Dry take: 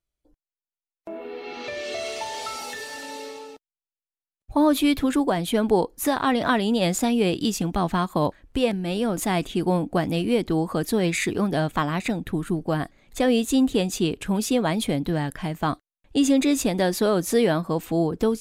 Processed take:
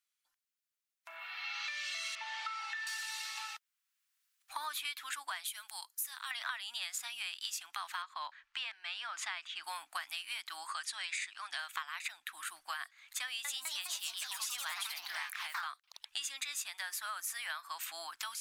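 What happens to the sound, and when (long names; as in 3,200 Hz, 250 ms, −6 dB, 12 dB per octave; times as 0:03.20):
0:02.15–0:02.87: Bessel low-pass filter 1,900 Hz
0:03.37–0:04.85: multiband upward and downward compressor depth 40%
0:05.47–0:06.31: first-order pre-emphasis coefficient 0.8
0:08.02–0:09.64: high-frequency loss of the air 130 metres
0:10.67–0:11.59: Chebyshev low-pass filter 9,300 Hz, order 4
0:13.24–0:16.16: delay with pitch and tempo change per echo 205 ms, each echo +2 semitones, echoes 3
0:16.81–0:17.50: parametric band 4,000 Hz −7.5 dB 1.3 octaves
whole clip: inverse Chebyshev high-pass filter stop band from 480 Hz, stop band 50 dB; downward compressor 6 to 1, threshold −42 dBFS; level +4.5 dB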